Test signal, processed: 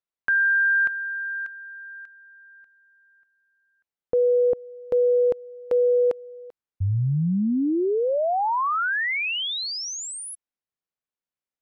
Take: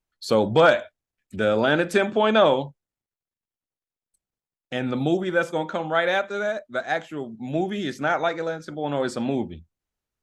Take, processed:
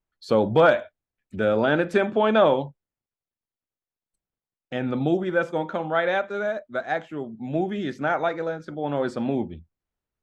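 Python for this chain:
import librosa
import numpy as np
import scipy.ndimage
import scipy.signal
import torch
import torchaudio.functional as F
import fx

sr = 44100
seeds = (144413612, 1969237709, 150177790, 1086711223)

y = fx.lowpass(x, sr, hz=2000.0, slope=6)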